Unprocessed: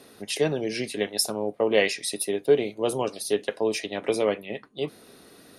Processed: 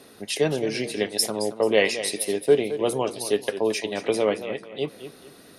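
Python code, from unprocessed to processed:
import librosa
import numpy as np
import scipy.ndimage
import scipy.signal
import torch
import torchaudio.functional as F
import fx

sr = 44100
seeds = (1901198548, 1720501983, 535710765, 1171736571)

y = fx.echo_warbled(x, sr, ms=220, feedback_pct=32, rate_hz=2.8, cents=102, wet_db=-12.0)
y = F.gain(torch.from_numpy(y), 1.5).numpy()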